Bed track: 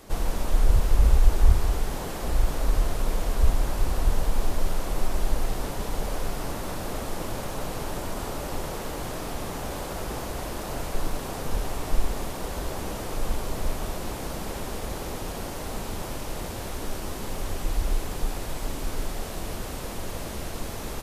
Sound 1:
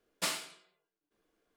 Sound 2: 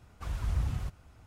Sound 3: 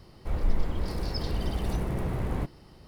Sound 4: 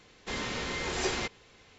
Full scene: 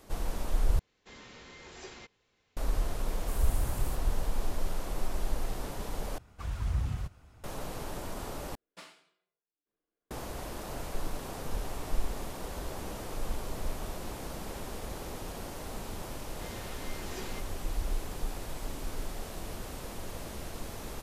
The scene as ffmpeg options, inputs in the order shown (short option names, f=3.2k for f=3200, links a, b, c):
-filter_complex "[4:a]asplit=2[a][b];[2:a]asplit=2[c][d];[0:a]volume=-7dB[e];[c]aexciter=amount=13.9:drive=4.5:freq=7.2k[f];[1:a]lowpass=f=2.7k:p=1[g];[e]asplit=4[h][i][j][k];[h]atrim=end=0.794[l];[a]atrim=end=1.78,asetpts=PTS-STARTPTS,volume=-16dB[m];[i]atrim=start=2.566:end=6.184[n];[d]atrim=end=1.26,asetpts=PTS-STARTPTS,volume=-0.5dB[o];[j]atrim=start=7.436:end=8.554[p];[g]atrim=end=1.56,asetpts=PTS-STARTPTS,volume=-13dB[q];[k]atrim=start=10.106[r];[f]atrim=end=1.26,asetpts=PTS-STARTPTS,volume=-7.5dB,afade=t=in:d=0.004:c=hsin,afade=t=out:st=1.256:d=0.004:c=hsin,adelay=3060[s];[b]atrim=end=1.78,asetpts=PTS-STARTPTS,volume=-13dB,afade=t=in:d=0.004:c=hsin,afade=t=out:st=1.776:d=0.004:c=hsin,adelay=16130[t];[l][m]acrossfade=d=0.004:c1=hsin:c2=hsin[u];[u][n]acrossfade=d=0.004:c1=hsin:c2=hsin[v];[v][o]acrossfade=d=0.004:c1=hsin:c2=hsin[w];[w][p]acrossfade=d=0.004:c1=hsin:c2=hsin[x];[x][q]acrossfade=d=0.004:c1=hsin:c2=hsin[y];[y][r]acrossfade=d=0.004:c1=hsin:c2=hsin[z];[z][s][t]amix=inputs=3:normalize=0"